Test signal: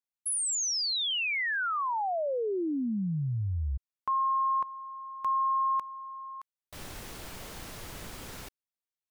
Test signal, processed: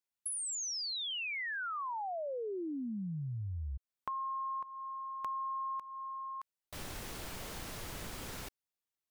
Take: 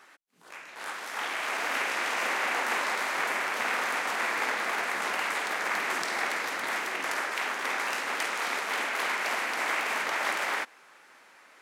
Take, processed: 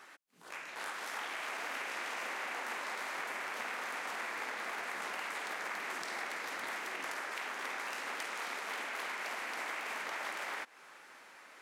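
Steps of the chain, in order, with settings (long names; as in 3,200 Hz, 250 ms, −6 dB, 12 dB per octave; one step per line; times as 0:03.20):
downward compressor 5 to 1, threshold −38 dBFS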